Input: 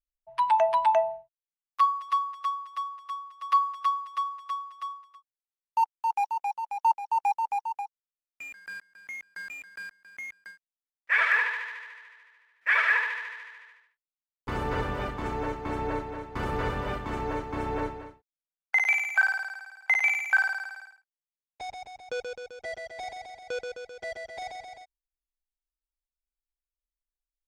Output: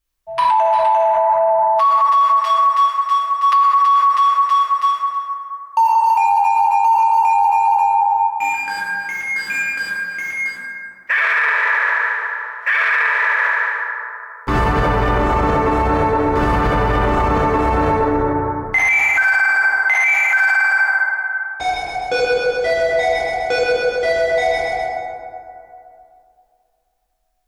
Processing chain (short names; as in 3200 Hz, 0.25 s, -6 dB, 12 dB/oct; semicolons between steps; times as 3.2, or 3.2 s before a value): 2.31–3.33 HPF 720 Hz 12 dB/oct; plate-style reverb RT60 2.7 s, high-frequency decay 0.35×, DRR -7.5 dB; maximiser +20 dB; gain -7 dB